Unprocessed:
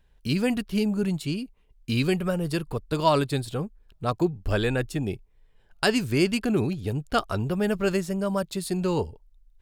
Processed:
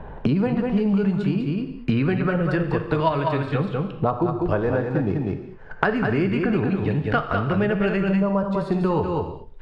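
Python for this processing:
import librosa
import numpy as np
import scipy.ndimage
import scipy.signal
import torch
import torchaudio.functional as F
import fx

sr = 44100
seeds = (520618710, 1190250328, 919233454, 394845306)

p1 = fx.median_filter(x, sr, points=15, at=(4.57, 5.85))
p2 = fx.level_steps(p1, sr, step_db=17)
p3 = p1 + (p2 * 10.0 ** (1.0 / 20.0))
p4 = fx.filter_lfo_lowpass(p3, sr, shape='saw_up', hz=0.25, low_hz=940.0, high_hz=2400.0, q=1.7)
p5 = p4 + fx.echo_single(p4, sr, ms=197, db=-5.5, dry=0)
p6 = fx.rev_gated(p5, sr, seeds[0], gate_ms=250, shape='falling', drr_db=6.5)
p7 = fx.band_squash(p6, sr, depth_pct=100)
y = p7 * 10.0 ** (-1.5 / 20.0)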